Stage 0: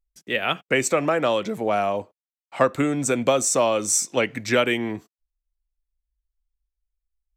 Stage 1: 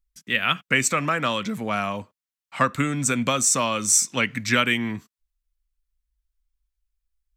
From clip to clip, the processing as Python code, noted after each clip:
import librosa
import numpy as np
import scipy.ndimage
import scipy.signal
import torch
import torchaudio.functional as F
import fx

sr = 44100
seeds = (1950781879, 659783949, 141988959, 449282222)

y = fx.band_shelf(x, sr, hz=510.0, db=-11.0, octaves=1.7)
y = y * 10.0 ** (3.0 / 20.0)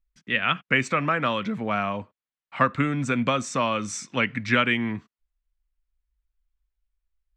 y = scipy.signal.sosfilt(scipy.signal.butter(2, 2900.0, 'lowpass', fs=sr, output='sos'), x)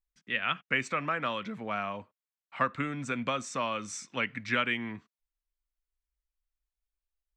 y = fx.low_shelf(x, sr, hz=310.0, db=-6.0)
y = y * 10.0 ** (-6.5 / 20.0)